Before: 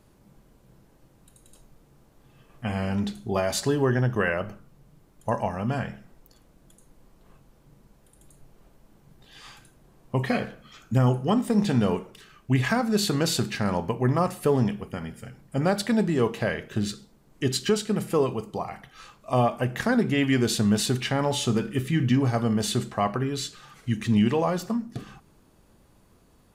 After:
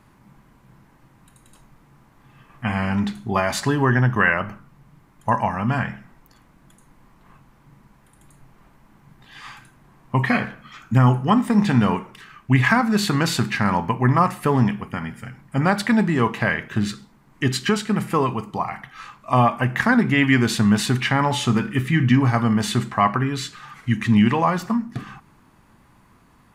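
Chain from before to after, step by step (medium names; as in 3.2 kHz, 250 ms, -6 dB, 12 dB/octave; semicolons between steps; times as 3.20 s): graphic EQ 125/250/500/1000/2000 Hz +5/+5/-5/+10/+9 dB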